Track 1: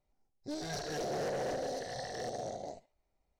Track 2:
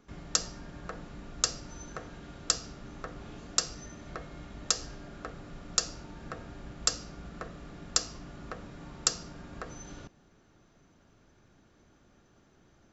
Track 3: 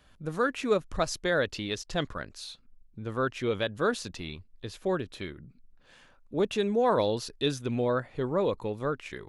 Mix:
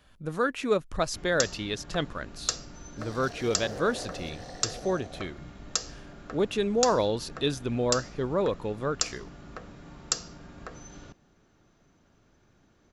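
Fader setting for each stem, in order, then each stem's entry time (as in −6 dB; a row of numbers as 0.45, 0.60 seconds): −4.0, −1.0, +0.5 decibels; 2.50, 1.05, 0.00 seconds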